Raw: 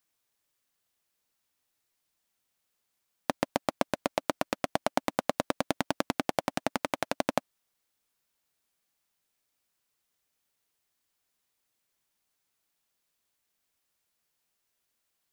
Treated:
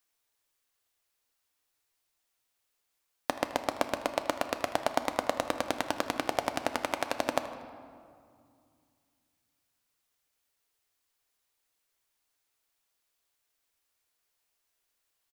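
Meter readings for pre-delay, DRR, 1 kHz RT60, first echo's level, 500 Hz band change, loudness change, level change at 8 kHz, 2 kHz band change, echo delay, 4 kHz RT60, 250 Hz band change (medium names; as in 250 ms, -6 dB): 4 ms, 7.5 dB, 2.3 s, -17.0 dB, 0.0 dB, -0.5 dB, +0.5 dB, +0.5 dB, 79 ms, 1.3 s, -3.5 dB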